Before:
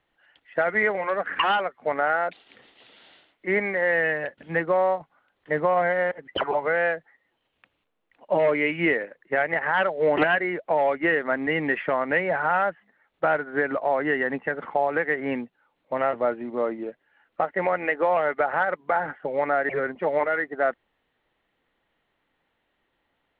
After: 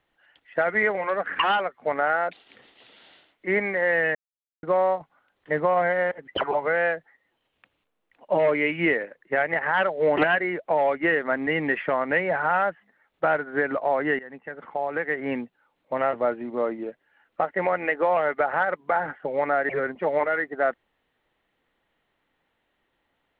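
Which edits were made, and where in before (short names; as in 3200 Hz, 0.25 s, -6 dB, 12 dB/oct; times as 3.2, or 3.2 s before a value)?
4.15–4.63 mute
14.19–15.39 fade in linear, from -19 dB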